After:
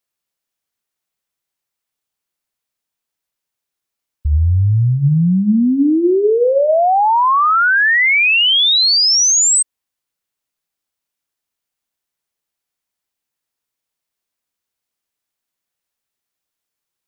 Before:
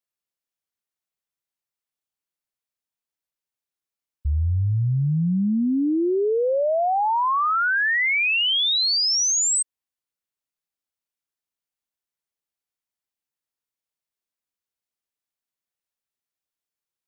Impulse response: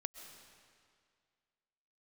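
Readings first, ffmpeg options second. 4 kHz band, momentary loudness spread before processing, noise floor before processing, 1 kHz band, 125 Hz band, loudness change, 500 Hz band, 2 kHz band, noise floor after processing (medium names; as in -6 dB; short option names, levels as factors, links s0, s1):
+8.5 dB, 5 LU, under -85 dBFS, +8.5 dB, +8.0 dB, +8.5 dB, +8.0 dB, +8.5 dB, -82 dBFS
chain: -af "bandreject=f=66.29:t=h:w=4,bandreject=f=132.58:t=h:w=4,bandreject=f=198.87:t=h:w=4,bandreject=f=265.16:t=h:w=4,bandreject=f=331.45:t=h:w=4,bandreject=f=397.74:t=h:w=4,bandreject=f=464.03:t=h:w=4,bandreject=f=530.32:t=h:w=4,bandreject=f=596.61:t=h:w=4,volume=2.66"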